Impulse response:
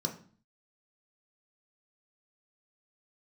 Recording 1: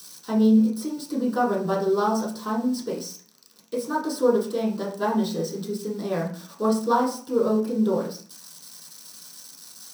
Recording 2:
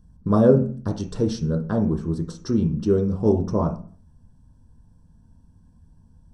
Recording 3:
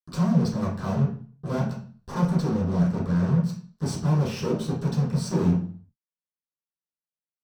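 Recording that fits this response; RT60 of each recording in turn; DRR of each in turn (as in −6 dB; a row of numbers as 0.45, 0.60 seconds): 2; 0.45, 0.45, 0.45 seconds; −6.5, 2.0, −12.5 decibels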